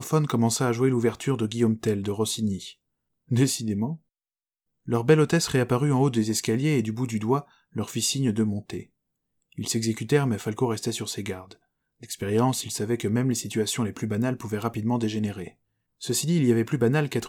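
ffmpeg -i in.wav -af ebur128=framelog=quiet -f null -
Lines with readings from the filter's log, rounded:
Integrated loudness:
  I:         -25.4 LUFS
  Threshold: -35.9 LUFS
Loudness range:
  LRA:         4.5 LU
  Threshold: -46.5 LUFS
  LRA low:   -28.6 LUFS
  LRA high:  -24.1 LUFS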